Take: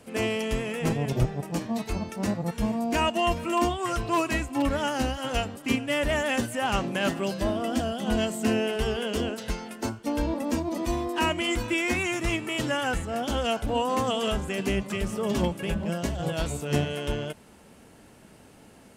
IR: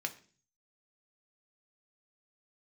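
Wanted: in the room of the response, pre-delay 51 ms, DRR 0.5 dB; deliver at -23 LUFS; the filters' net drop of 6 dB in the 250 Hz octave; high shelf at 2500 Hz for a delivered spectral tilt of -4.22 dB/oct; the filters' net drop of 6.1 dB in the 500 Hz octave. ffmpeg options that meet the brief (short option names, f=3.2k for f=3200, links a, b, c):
-filter_complex "[0:a]equalizer=f=250:t=o:g=-6,equalizer=f=500:t=o:g=-6,highshelf=f=2.5k:g=-8,asplit=2[a][b];[1:a]atrim=start_sample=2205,adelay=51[c];[b][c]afir=irnorm=-1:irlink=0,volume=-2.5dB[d];[a][d]amix=inputs=2:normalize=0,volume=7dB"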